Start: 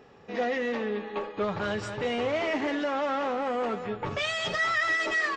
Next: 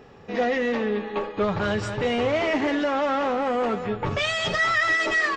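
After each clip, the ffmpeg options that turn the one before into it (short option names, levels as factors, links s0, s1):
-af "lowshelf=f=130:g=7.5,volume=1.68"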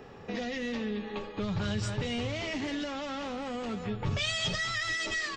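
-filter_complex "[0:a]acrossover=split=200|3000[s0][s1][s2];[s1]acompressor=threshold=0.0141:ratio=10[s3];[s0][s3][s2]amix=inputs=3:normalize=0"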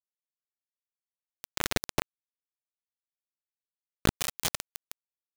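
-af "acrusher=bits=3:mix=0:aa=0.000001,volume=1.88"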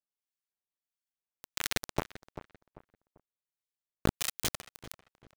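-filter_complex "[0:a]acrossover=split=1300[s0][s1];[s0]aeval=exprs='val(0)*(1-0.7/2+0.7/2*cos(2*PI*1.5*n/s))':c=same[s2];[s1]aeval=exprs='val(0)*(1-0.7/2-0.7/2*cos(2*PI*1.5*n/s))':c=same[s3];[s2][s3]amix=inputs=2:normalize=0,asplit=2[s4][s5];[s5]adelay=392,lowpass=f=1600:p=1,volume=0.251,asplit=2[s6][s7];[s7]adelay=392,lowpass=f=1600:p=1,volume=0.33,asplit=2[s8][s9];[s9]adelay=392,lowpass=f=1600:p=1,volume=0.33[s10];[s4][s6][s8][s10]amix=inputs=4:normalize=0"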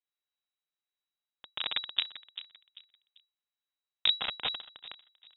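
-af "aeval=exprs='abs(val(0))':c=same,lowpass=f=3300:t=q:w=0.5098,lowpass=f=3300:t=q:w=0.6013,lowpass=f=3300:t=q:w=0.9,lowpass=f=3300:t=q:w=2.563,afreqshift=-3900,volume=1.26"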